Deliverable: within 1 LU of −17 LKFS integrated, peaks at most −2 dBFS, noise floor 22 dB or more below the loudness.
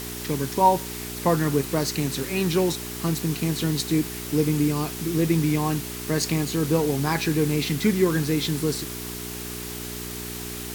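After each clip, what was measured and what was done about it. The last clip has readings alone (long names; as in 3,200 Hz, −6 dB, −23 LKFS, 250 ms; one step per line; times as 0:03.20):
mains hum 60 Hz; hum harmonics up to 420 Hz; level of the hum −34 dBFS; background noise floor −34 dBFS; target noise floor −47 dBFS; integrated loudness −24.5 LKFS; sample peak −5.5 dBFS; target loudness −17.0 LKFS
→ hum removal 60 Hz, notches 7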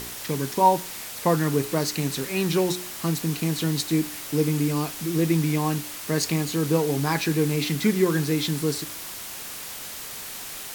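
mains hum none found; background noise floor −37 dBFS; target noise floor −47 dBFS
→ noise reduction from a noise print 10 dB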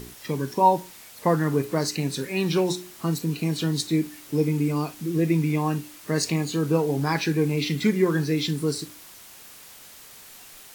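background noise floor −47 dBFS; integrated loudness −25.0 LKFS; sample peak −6.0 dBFS; target loudness −17.0 LKFS
→ level +8 dB
brickwall limiter −2 dBFS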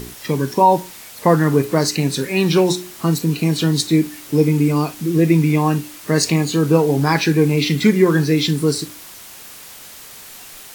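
integrated loudness −17.0 LKFS; sample peak −2.0 dBFS; background noise floor −39 dBFS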